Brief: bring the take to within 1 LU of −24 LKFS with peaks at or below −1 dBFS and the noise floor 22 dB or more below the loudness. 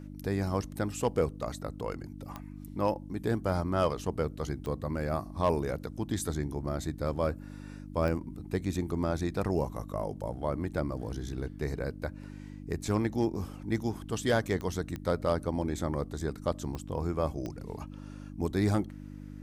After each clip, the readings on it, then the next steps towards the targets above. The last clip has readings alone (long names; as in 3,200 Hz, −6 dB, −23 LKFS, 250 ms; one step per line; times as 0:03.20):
number of clicks 7; mains hum 50 Hz; hum harmonics up to 300 Hz; level of the hum −41 dBFS; integrated loudness −33.0 LKFS; sample peak −16.0 dBFS; target loudness −24.0 LKFS
→ click removal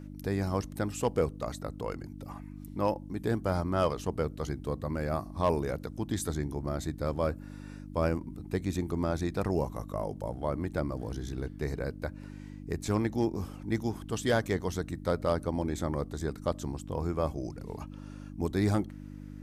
number of clicks 0; mains hum 50 Hz; hum harmonics up to 300 Hz; level of the hum −41 dBFS
→ hum removal 50 Hz, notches 6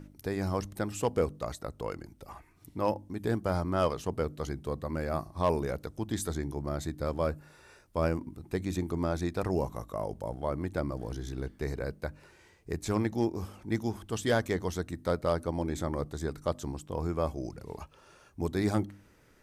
mains hum none found; integrated loudness −33.5 LKFS; sample peak −15.5 dBFS; target loudness −24.0 LKFS
→ level +9.5 dB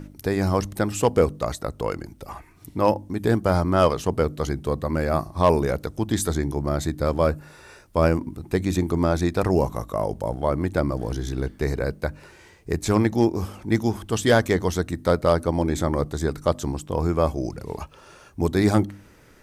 integrated loudness −24.0 LKFS; sample peak −6.0 dBFS; background noise floor −51 dBFS